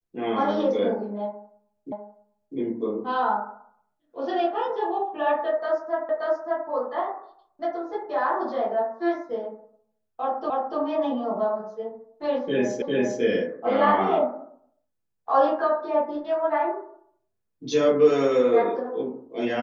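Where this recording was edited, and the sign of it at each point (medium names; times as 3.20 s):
1.92 s: repeat of the last 0.65 s
6.09 s: repeat of the last 0.58 s
10.50 s: repeat of the last 0.29 s
12.82 s: repeat of the last 0.4 s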